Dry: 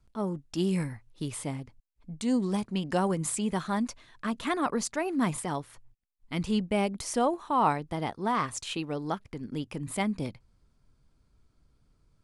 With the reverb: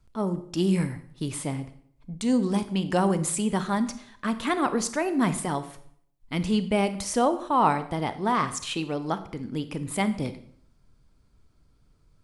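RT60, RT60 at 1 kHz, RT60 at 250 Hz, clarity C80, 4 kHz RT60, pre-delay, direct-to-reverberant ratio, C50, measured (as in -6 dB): 0.60 s, 0.60 s, 0.70 s, 16.5 dB, 0.50 s, 29 ms, 11.5 dB, 13.5 dB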